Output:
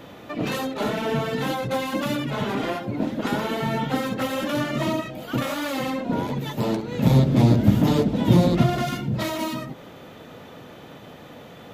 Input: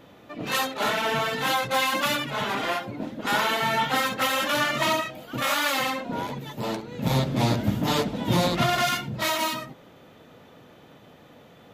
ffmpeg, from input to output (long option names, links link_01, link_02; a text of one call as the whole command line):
ffmpeg -i in.wav -filter_complex "[0:a]acrossover=split=490[link_01][link_02];[link_02]acompressor=threshold=-39dB:ratio=6[link_03];[link_01][link_03]amix=inputs=2:normalize=0,volume=8dB" out.wav